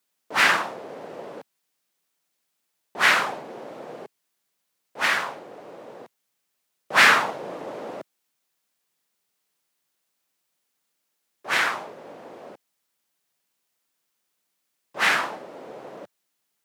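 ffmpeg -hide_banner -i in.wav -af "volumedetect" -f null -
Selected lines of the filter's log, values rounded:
mean_volume: -29.2 dB
max_volume: -2.4 dB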